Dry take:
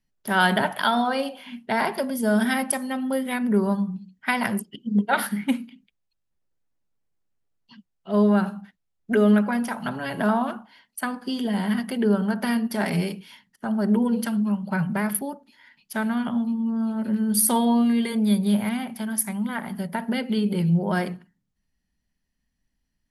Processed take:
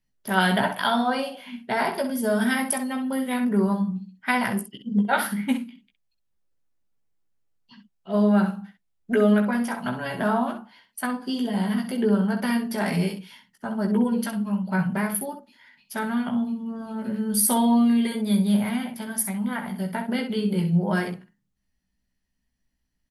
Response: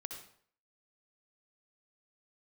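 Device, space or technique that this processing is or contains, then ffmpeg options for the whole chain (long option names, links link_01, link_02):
slapback doubling: -filter_complex "[0:a]asplit=3[link_01][link_02][link_03];[link_02]adelay=16,volume=-4.5dB[link_04];[link_03]adelay=64,volume=-8.5dB[link_05];[link_01][link_04][link_05]amix=inputs=3:normalize=0,asplit=3[link_06][link_07][link_08];[link_06]afade=type=out:start_time=10.38:duration=0.02[link_09];[link_07]adynamicequalizer=threshold=0.00891:dfrequency=1900:dqfactor=1.2:tfrequency=1900:tqfactor=1.2:attack=5:release=100:ratio=0.375:range=2:mode=cutabove:tftype=bell,afade=type=in:start_time=10.38:duration=0.02,afade=type=out:start_time=12.08:duration=0.02[link_10];[link_08]afade=type=in:start_time=12.08:duration=0.02[link_11];[link_09][link_10][link_11]amix=inputs=3:normalize=0,volume=-2dB"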